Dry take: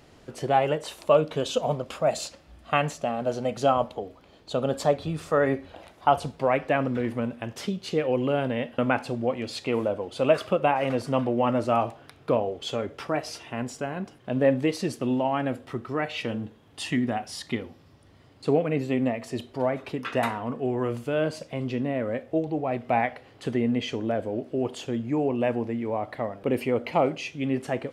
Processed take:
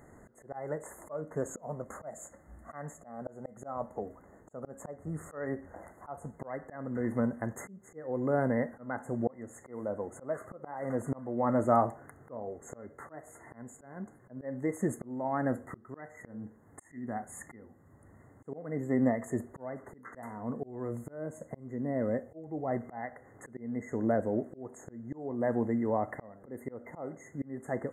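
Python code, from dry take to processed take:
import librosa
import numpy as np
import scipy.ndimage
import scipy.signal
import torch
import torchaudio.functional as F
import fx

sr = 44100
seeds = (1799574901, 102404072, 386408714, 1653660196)

y = fx.peak_eq(x, sr, hz=210.0, db=4.5, octaves=0.21)
y = fx.auto_swell(y, sr, attack_ms=505.0)
y = fx.dynamic_eq(y, sr, hz=1500.0, q=0.94, threshold_db=-50.0, ratio=4.0, max_db=-6, at=(20.19, 22.68))
y = fx.brickwall_bandstop(y, sr, low_hz=2100.0, high_hz=6400.0)
y = F.gain(torch.from_numpy(y), -1.5).numpy()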